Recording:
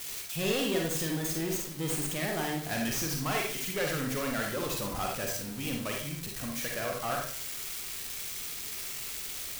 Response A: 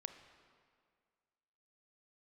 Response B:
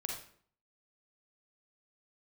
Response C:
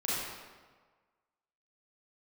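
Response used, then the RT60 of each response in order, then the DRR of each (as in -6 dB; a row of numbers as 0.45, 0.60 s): B; 2.0, 0.55, 1.5 s; 8.0, 0.0, -8.5 dB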